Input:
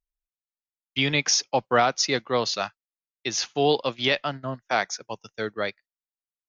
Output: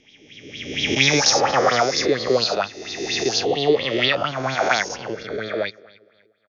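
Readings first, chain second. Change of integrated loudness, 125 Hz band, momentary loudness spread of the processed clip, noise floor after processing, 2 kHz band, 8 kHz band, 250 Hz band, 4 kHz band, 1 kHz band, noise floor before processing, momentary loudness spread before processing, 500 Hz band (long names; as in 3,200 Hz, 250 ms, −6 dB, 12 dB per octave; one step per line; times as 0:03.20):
+5.0 dB, +4.0 dB, 13 LU, −59 dBFS, +6.0 dB, can't be measured, +5.0 dB, +6.0 dB, +4.0 dB, below −85 dBFS, 12 LU, +6.0 dB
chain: peak hold with a rise ahead of every peak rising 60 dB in 1.61 s
low-shelf EQ 220 Hz +8 dB
rotating-speaker cabinet horn 0.6 Hz
on a send: repeating echo 280 ms, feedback 37%, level −22 dB
on the sum: auto-filter bell 4.3 Hz 340–4,300 Hz +15 dB
level −3 dB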